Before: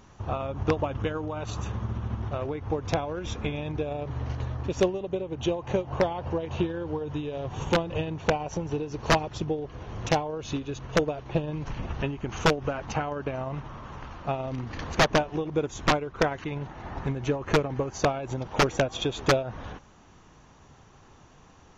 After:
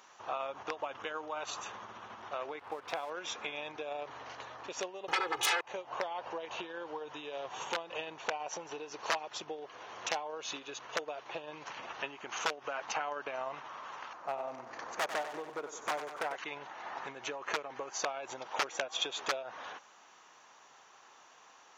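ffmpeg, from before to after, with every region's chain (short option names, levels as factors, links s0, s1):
-filter_complex "[0:a]asettb=1/sr,asplit=3[s0][s1][s2];[s0]atrim=end=2.594[s3];[s1]atrim=start=2.59:end=3.1,asetpts=PTS-STARTPTS,afade=t=in:d=0.004:c=qsin,afade=t=out:st=0.506:d=0.004:c=qsin,lowpass=3600,aeval=exprs='sgn(val(0))*max(abs(val(0))-0.00355,0)':c=same[s4];[s2]atrim=start=3.096[s5];[s3][s4]acrossfade=d=0.004:c1=hsin:c2=qsin[s6];[s6][s5]acrossfade=d=0.004:c1=qsin:c2=hsin,asettb=1/sr,asplit=3[s7][s8][s9];[s7]atrim=end=5.084[s10];[s8]atrim=start=5.08:end=5.61,asetpts=PTS-STARTPTS,afade=t=in:d=0.004:c=qsin,afade=t=out:st=0.526:d=0.004:c=qsin,aeval=exprs='0.168*sin(PI/2*7.94*val(0)/0.168)':c=same,aecho=1:1:2.4:0.99,atrim=end_sample=23373[s11];[s9]atrim=start=5.606[s12];[s10][s11]acrossfade=d=0.004:c1=hsin:c2=qsin[s13];[s13][s12]acrossfade=d=0.004:c1=qsin:c2=hsin,asettb=1/sr,asplit=3[s14][s15][s16];[s14]atrim=end=14.134[s17];[s15]atrim=start=14.13:end=16.36,asetpts=PTS-STARTPTS,afade=t=in:d=0.004:c=qsin,afade=t=out:st=2.226:d=0.004:c=qsin,equalizer=f=3300:w=0.78:g=-13,asoftclip=type=hard:threshold=0.0708,aecho=1:1:95|190|285|380|475|570|665:0.266|0.154|0.0895|0.0519|0.0301|0.0175|0.0101,atrim=end_sample=98343[s18];[s16]atrim=start=16.356[s19];[s17][s18]acrossfade=d=0.004:c1=hsin:c2=qsin[s20];[s20][s19]acrossfade=d=0.004:c1=qsin:c2=hsin,acompressor=threshold=0.0447:ratio=6,highpass=780,volume=1.12"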